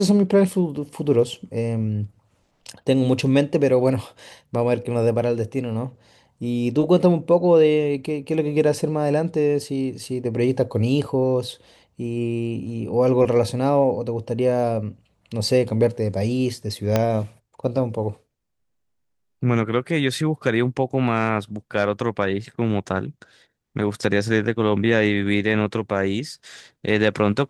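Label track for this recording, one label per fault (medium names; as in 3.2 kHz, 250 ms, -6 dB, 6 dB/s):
16.960000	16.960000	pop -5 dBFS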